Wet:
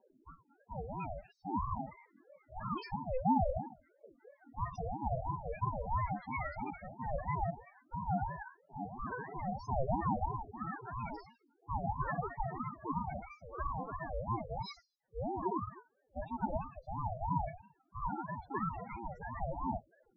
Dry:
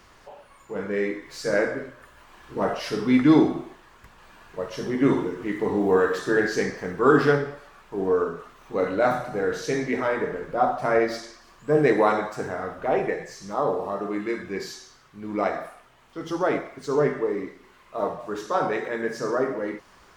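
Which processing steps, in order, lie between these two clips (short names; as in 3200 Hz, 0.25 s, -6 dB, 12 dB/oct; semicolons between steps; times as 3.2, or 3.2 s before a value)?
reverse; compressor 6:1, threshold -30 dBFS, peak gain reduction 17 dB; reverse; spectral noise reduction 12 dB; phaser 0.1 Hz, delay 5 ms, feedback 56%; loudest bins only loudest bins 4; low-pass opened by the level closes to 650 Hz, open at -31 dBFS; ring modulator with a swept carrier 420 Hz, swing 40%, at 3 Hz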